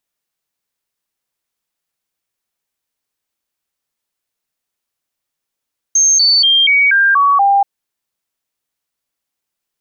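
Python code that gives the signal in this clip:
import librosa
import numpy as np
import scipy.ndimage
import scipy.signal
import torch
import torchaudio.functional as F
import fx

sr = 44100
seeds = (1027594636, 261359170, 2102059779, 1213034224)

y = fx.stepped_sweep(sr, from_hz=6380.0, direction='down', per_octave=2, tones=7, dwell_s=0.24, gap_s=0.0, level_db=-7.5)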